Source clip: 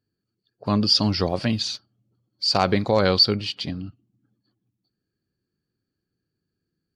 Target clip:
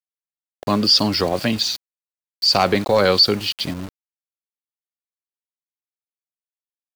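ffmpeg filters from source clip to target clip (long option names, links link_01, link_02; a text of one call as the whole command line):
ffmpeg -i in.wav -filter_complex "[0:a]apsyclip=13dB,acrossover=split=230|3000[link_01][link_02][link_03];[link_01]acompressor=threshold=-25dB:ratio=2.5[link_04];[link_04][link_02][link_03]amix=inputs=3:normalize=0,aeval=exprs='val(0)*gte(abs(val(0)),0.0708)':channel_layout=same,volume=-7dB" out.wav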